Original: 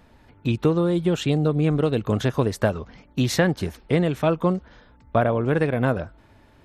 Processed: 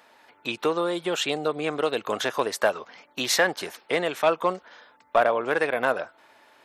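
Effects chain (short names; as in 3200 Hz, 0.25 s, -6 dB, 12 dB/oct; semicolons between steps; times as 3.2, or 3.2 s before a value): HPF 650 Hz 12 dB/oct; in parallel at -3 dB: overloaded stage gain 19 dB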